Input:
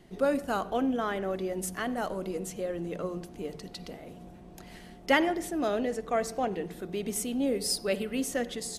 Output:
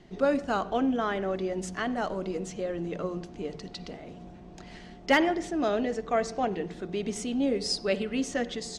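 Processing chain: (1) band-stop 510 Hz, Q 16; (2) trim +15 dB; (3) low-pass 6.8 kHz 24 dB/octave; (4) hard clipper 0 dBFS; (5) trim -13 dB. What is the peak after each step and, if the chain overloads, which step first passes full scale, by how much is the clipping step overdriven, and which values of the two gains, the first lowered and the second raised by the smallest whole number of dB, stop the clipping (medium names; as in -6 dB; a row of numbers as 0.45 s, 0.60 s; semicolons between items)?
-9.5 dBFS, +5.5 dBFS, +5.5 dBFS, 0.0 dBFS, -13.0 dBFS; step 2, 5.5 dB; step 2 +9 dB, step 5 -7 dB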